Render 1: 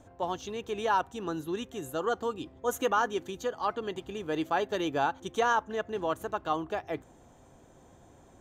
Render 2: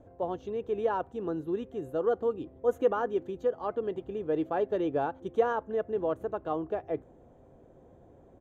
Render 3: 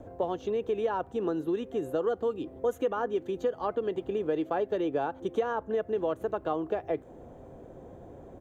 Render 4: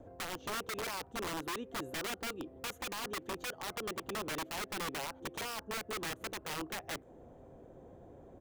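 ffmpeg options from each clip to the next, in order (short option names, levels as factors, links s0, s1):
-af "firequalizer=gain_entry='entry(270,0);entry(480,5);entry(880,-6);entry(5300,-21)':delay=0.05:min_phase=1"
-filter_complex "[0:a]acrossover=split=210|2000[s0][s1][s2];[s0]acompressor=threshold=0.00126:ratio=4[s3];[s1]acompressor=threshold=0.0141:ratio=4[s4];[s2]acompressor=threshold=0.00126:ratio=4[s5];[s3][s4][s5]amix=inputs=3:normalize=0,volume=2.82"
-af "aeval=exprs='(mod(21.1*val(0)+1,2)-1)/21.1':c=same,volume=0.447"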